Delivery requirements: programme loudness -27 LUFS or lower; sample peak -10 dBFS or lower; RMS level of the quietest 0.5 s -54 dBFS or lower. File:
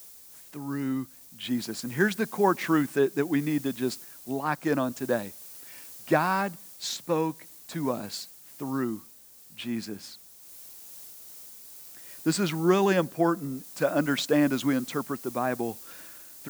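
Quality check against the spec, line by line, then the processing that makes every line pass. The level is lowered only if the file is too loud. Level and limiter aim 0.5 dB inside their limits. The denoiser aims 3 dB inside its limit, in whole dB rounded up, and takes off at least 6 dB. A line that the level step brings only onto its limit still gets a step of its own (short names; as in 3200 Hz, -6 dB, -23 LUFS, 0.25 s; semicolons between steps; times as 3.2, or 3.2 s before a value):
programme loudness -28.0 LUFS: OK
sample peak -9.0 dBFS: fail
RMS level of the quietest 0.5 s -52 dBFS: fail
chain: denoiser 6 dB, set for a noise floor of -52 dBFS; limiter -10.5 dBFS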